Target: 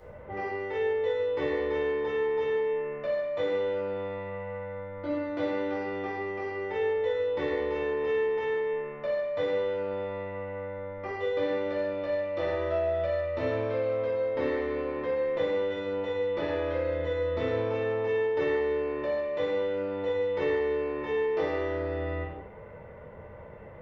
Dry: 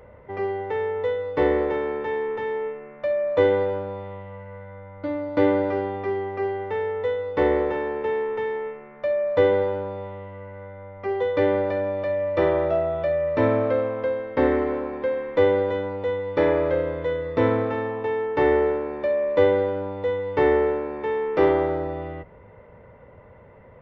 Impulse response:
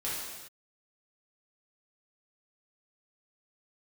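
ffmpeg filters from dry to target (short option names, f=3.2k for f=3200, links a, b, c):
-filter_complex "[0:a]acrossover=split=1700|3400[a][b][c];[a]acompressor=threshold=-33dB:ratio=4[d];[b]acompressor=threshold=-48dB:ratio=4[e];[c]acompressor=threshold=-53dB:ratio=4[f];[d][e][f]amix=inputs=3:normalize=0[g];[1:a]atrim=start_sample=2205,afade=t=out:st=0.38:d=0.01,atrim=end_sample=17199,asetrate=57330,aresample=44100[h];[g][h]afir=irnorm=-1:irlink=0"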